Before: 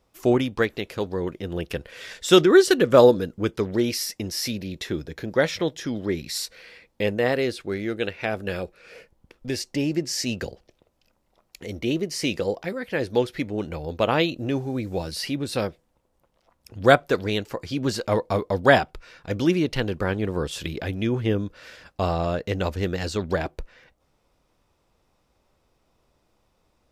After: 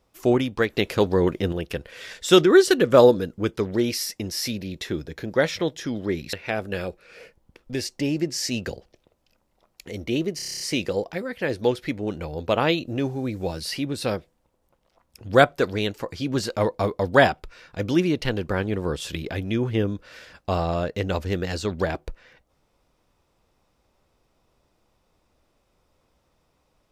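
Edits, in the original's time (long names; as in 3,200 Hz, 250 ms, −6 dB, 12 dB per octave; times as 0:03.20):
0:00.77–0:01.52: clip gain +7.5 dB
0:06.33–0:08.08: remove
0:12.11: stutter 0.03 s, 9 plays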